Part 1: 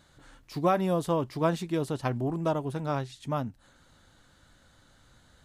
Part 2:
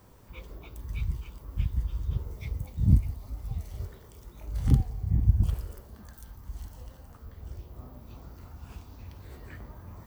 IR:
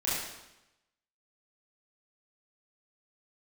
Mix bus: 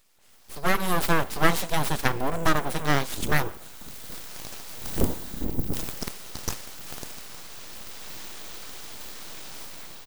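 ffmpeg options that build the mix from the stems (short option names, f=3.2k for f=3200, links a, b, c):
-filter_complex "[0:a]volume=-4dB,asplit=3[a][b][c];[b]volume=-23.5dB[d];[1:a]equalizer=f=260:w=0.43:g=7,adelay=300,volume=-12.5dB,asplit=2[e][f];[f]volume=-16.5dB[g];[c]apad=whole_len=456966[h];[e][h]sidechaincompress=threshold=-49dB:ratio=8:attack=5.3:release=606[i];[2:a]atrim=start_sample=2205[j];[d][g]amix=inputs=2:normalize=0[k];[k][j]afir=irnorm=-1:irlink=0[l];[a][i][l]amix=inputs=3:normalize=0,aemphasis=mode=production:type=bsi,dynaudnorm=f=210:g=7:m=16dB,aeval=exprs='abs(val(0))':c=same"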